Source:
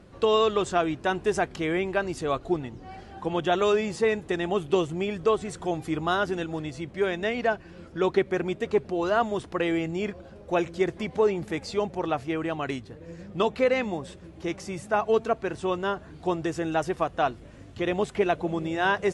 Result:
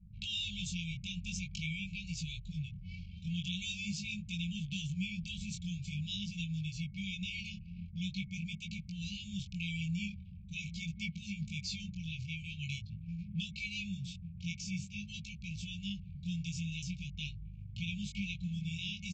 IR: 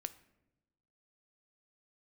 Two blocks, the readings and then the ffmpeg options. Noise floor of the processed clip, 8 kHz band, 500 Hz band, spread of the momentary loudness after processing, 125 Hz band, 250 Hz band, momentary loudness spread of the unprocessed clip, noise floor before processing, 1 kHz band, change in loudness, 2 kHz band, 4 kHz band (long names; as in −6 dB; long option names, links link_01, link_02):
−49 dBFS, −2.5 dB, below −40 dB, 6 LU, −1.5 dB, −10.0 dB, 10 LU, −47 dBFS, below −40 dB, −12.5 dB, −11.0 dB, −2.5 dB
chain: -filter_complex "[0:a]anlmdn=0.0158,acrossover=split=170|3000[link_01][link_02][link_03];[link_02]acompressor=threshold=-32dB:ratio=2[link_04];[link_01][link_04][link_03]amix=inputs=3:normalize=0,afftfilt=real='re*(1-between(b*sr/4096,210,2200))':imag='im*(1-between(b*sr/4096,210,2200))':win_size=4096:overlap=0.75,acompressor=threshold=-42dB:ratio=1.5,flanger=delay=18:depth=5.6:speed=0.45,aresample=16000,aresample=44100,volume=5dB"